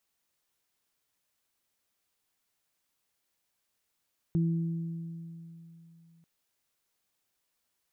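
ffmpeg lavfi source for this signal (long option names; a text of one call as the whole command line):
ffmpeg -f lavfi -i "aevalsrc='0.0708*pow(10,-3*t/3.14)*sin(2*PI*166*t)+0.0224*pow(10,-3*t/1.98)*sin(2*PI*332*t)':duration=1.89:sample_rate=44100" out.wav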